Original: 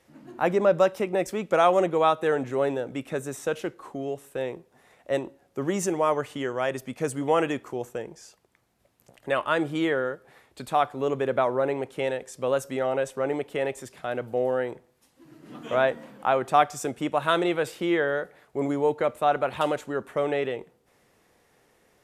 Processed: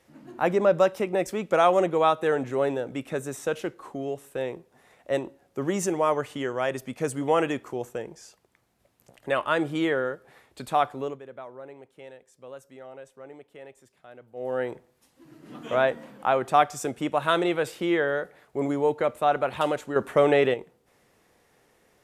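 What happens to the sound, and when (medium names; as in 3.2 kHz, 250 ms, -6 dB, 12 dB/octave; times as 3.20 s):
10.91–14.63 s: dip -17.5 dB, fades 0.29 s
19.96–20.54 s: gain +6.5 dB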